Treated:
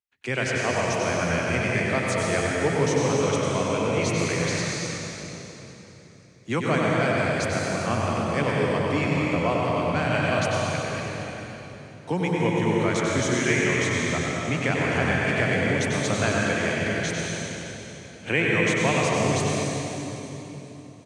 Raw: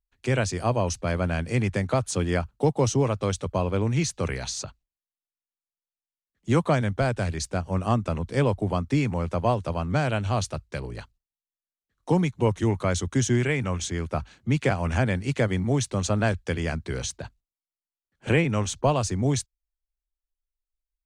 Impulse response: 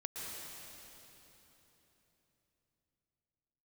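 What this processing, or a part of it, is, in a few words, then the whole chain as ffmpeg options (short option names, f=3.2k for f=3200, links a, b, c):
PA in a hall: -filter_complex "[0:a]highpass=140,equalizer=f=2.2k:t=o:w=1.4:g=8,aecho=1:1:95:0.501[a];[1:a]atrim=start_sample=2205[b];[a][b]afir=irnorm=-1:irlink=0"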